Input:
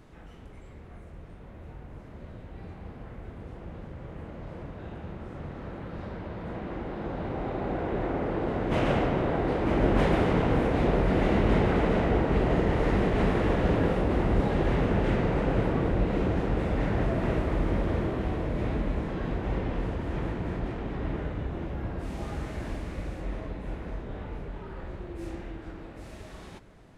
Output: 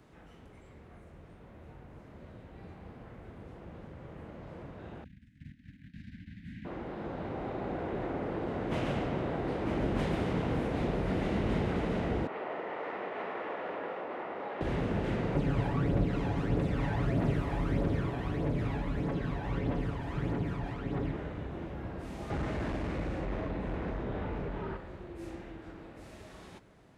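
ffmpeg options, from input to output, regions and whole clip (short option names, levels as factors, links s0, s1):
-filter_complex "[0:a]asettb=1/sr,asplit=3[s0][s1][s2];[s0]atrim=end=5.044[s3];[s1]atrim=start=5.04:end=6.65,asetpts=PTS-STARTPTS,afade=t=in:d=0.004:c=qsin,afade=t=out:st=1.606:d=0.004:c=qsin,agate=range=0.158:threshold=0.0126:ratio=16:release=100:detection=peak,asuperstop=centerf=680:order=20:qfactor=0.51[s4];[s2]atrim=start=6.646[s5];[s3][s4]acrossfade=d=0.004:c1=hsin:c2=qsin[s6];[s6][s5]acrossfade=d=0.004:c1=qsin:c2=hsin,asettb=1/sr,asplit=3[s7][s8][s9];[s7]atrim=end=12.274[s10];[s8]atrim=start=12.27:end=14.61,asetpts=PTS-STARTPTS,afade=t=in:d=0.004:c=qsin,afade=t=out:st=2.336:d=0.004:c=qsin,highpass=620,lowpass=2200,bandreject=f=1600:w=21[s11];[s9]atrim=start=14.606[s12];[s10][s11]acrossfade=d=0.004:c1=hsin:c2=qsin[s13];[s13][s12]acrossfade=d=0.004:c1=qsin:c2=hsin,asettb=1/sr,asplit=3[s14][s15][s16];[s14]atrim=end=15.354[s17];[s15]atrim=start=15.35:end=21.11,asetpts=PTS-STARTPTS,afade=t=in:d=0.004:c=qsin,afade=t=out:st=5.756:d=0.004:c=qsin,aecho=1:1:7.1:0.44,atrim=end_sample=254016,aphaser=in_gain=1:out_gain=1:delay=1.3:decay=0.51:speed=1.6:type=triangular[s18];[s16]atrim=start=21.106[s19];[s17][s18]acrossfade=d=0.004:c1=hsin:c2=qsin[s20];[s20][s19]acrossfade=d=0.004:c1=qsin:c2=hsin,asettb=1/sr,asplit=3[s21][s22][s23];[s21]atrim=end=22.304[s24];[s22]atrim=start=22.3:end=24.77,asetpts=PTS-STARTPTS,afade=t=in:d=0.004:c=qsin,afade=t=out:st=2.466:d=0.004:c=qsin,aeval=exprs='0.0794*sin(PI/2*1.78*val(0)/0.0794)':c=same,aemphasis=mode=reproduction:type=50fm[s25];[s23]atrim=start=24.766[s26];[s24][s25]acrossfade=d=0.004:c1=hsin:c2=qsin[s27];[s27][s26]acrossfade=d=0.004:c1=qsin:c2=hsin,highpass=f=90:p=1,acrossover=split=260|3000[s28][s29][s30];[s29]acompressor=threshold=0.0355:ratio=6[s31];[s28][s31][s30]amix=inputs=3:normalize=0,volume=0.631"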